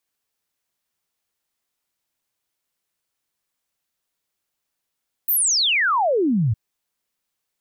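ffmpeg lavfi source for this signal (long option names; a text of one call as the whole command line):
ffmpeg -f lavfi -i "aevalsrc='0.158*clip(min(t,1.26-t)/0.01,0,1)*sin(2*PI*16000*1.26/log(100/16000)*(exp(log(100/16000)*t/1.26)-1))':duration=1.26:sample_rate=44100" out.wav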